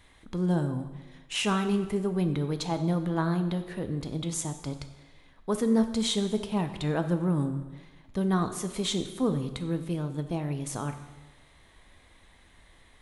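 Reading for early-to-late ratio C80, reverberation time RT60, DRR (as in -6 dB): 12.0 dB, 1.2 s, 7.5 dB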